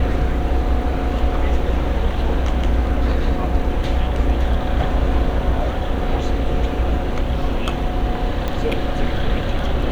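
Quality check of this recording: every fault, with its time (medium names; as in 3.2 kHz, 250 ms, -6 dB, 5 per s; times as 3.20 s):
8.48 s: pop -10 dBFS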